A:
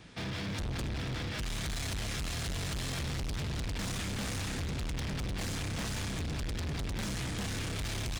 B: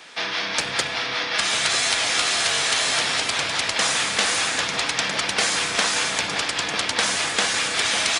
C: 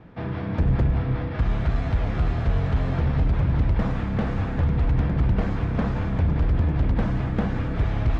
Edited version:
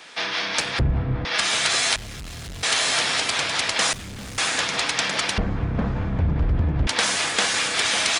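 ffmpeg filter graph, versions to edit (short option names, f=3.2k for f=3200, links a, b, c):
-filter_complex "[2:a]asplit=2[a][b];[0:a]asplit=2[c][d];[1:a]asplit=5[e][f][g][h][i];[e]atrim=end=0.792[j];[a]atrim=start=0.788:end=1.252[k];[f]atrim=start=1.248:end=1.962[l];[c]atrim=start=1.958:end=2.632[m];[g]atrim=start=2.628:end=3.932[n];[d]atrim=start=3.928:end=4.382[o];[h]atrim=start=4.378:end=5.382[p];[b]atrim=start=5.378:end=6.872[q];[i]atrim=start=6.868[r];[j][k]acrossfade=d=0.004:c1=hsin:c2=hsin[s];[s][l]acrossfade=d=0.004:c1=hsin:c2=hsin[t];[t][m]acrossfade=d=0.004:c1=hsin:c2=hsin[u];[u][n]acrossfade=d=0.004:c1=hsin:c2=hsin[v];[v][o]acrossfade=d=0.004:c1=hsin:c2=hsin[w];[w][p]acrossfade=d=0.004:c1=hsin:c2=hsin[x];[x][q]acrossfade=d=0.004:c1=hsin:c2=hsin[y];[y][r]acrossfade=d=0.004:c1=hsin:c2=hsin"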